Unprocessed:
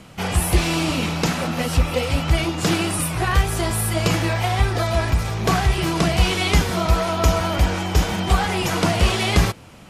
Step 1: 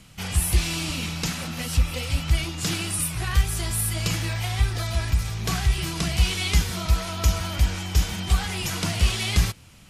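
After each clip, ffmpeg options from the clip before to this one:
-af "equalizer=f=550:w=0.33:g=-14"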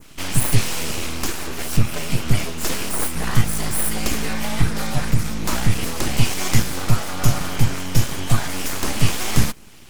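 -af "aeval=exprs='abs(val(0))':c=same,adynamicequalizer=threshold=0.00501:dfrequency=3600:dqfactor=0.83:tfrequency=3600:tqfactor=0.83:attack=5:release=100:ratio=0.375:range=2.5:mode=cutabove:tftype=bell,volume=2.24"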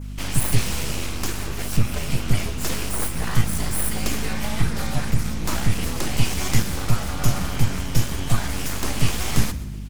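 -filter_complex "[0:a]aeval=exprs='val(0)+0.0398*(sin(2*PI*50*n/s)+sin(2*PI*2*50*n/s)/2+sin(2*PI*3*50*n/s)/3+sin(2*PI*4*50*n/s)/4+sin(2*PI*5*50*n/s)/5)':c=same,asplit=4[s0][s1][s2][s3];[s1]adelay=124,afreqshift=67,volume=0.15[s4];[s2]adelay=248,afreqshift=134,volume=0.0569[s5];[s3]adelay=372,afreqshift=201,volume=0.0216[s6];[s0][s4][s5][s6]amix=inputs=4:normalize=0,volume=0.708"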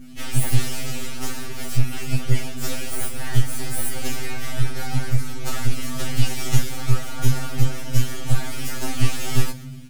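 -af "asuperstop=centerf=1000:order=4:qfactor=7.5,afftfilt=real='re*2.45*eq(mod(b,6),0)':imag='im*2.45*eq(mod(b,6),0)':win_size=2048:overlap=0.75"

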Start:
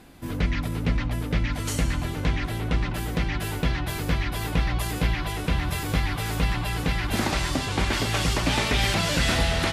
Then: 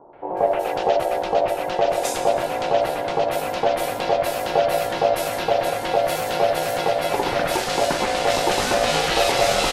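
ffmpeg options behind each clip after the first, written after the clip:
-filter_complex "[0:a]acrossover=split=520|2000[s0][s1][s2];[s1]adelay=130[s3];[s2]adelay=370[s4];[s0][s3][s4]amix=inputs=3:normalize=0,aeval=exprs='val(0)*sin(2*PI*630*n/s)':c=same,volume=2.24"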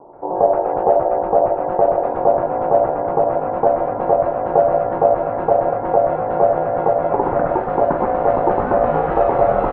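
-af "lowpass=f=1200:w=0.5412,lowpass=f=1200:w=1.3066,volume=1.78"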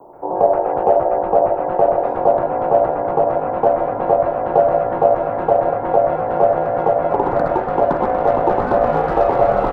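-filter_complex "[0:a]aemphasis=mode=production:type=75fm,acrossover=split=110|400|1300[s0][s1][s2][s3];[s3]asoftclip=type=hard:threshold=0.0299[s4];[s0][s1][s2][s4]amix=inputs=4:normalize=0,volume=1.12"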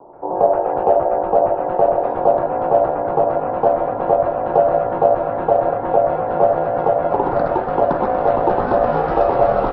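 -af "equalizer=f=2100:t=o:w=0.31:g=-4" -ar 16000 -c:a libmp3lame -b:a 24k

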